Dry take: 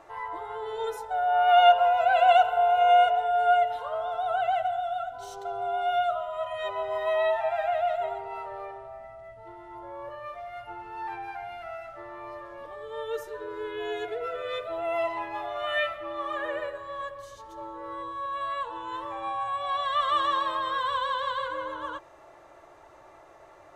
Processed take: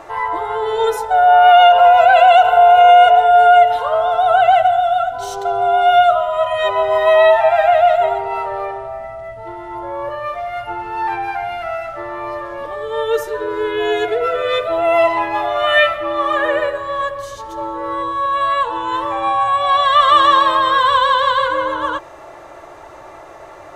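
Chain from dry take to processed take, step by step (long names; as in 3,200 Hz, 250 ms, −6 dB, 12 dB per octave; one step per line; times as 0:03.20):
boost into a limiter +16 dB
level −1 dB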